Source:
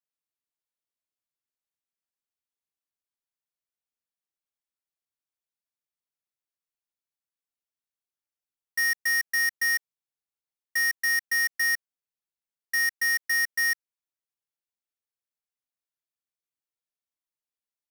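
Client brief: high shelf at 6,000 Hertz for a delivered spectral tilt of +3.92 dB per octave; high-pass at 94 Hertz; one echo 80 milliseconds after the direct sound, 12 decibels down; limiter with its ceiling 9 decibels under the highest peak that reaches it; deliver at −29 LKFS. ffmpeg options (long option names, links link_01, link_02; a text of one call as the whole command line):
ffmpeg -i in.wav -af "highpass=94,highshelf=frequency=6000:gain=7,alimiter=limit=-24dB:level=0:latency=1,aecho=1:1:80:0.251,volume=2dB" out.wav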